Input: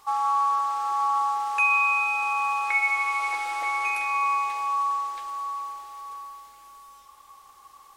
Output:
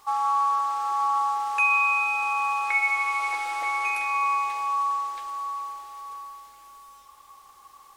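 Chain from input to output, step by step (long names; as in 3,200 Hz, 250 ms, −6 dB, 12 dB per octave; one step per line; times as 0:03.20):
bit-depth reduction 12 bits, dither triangular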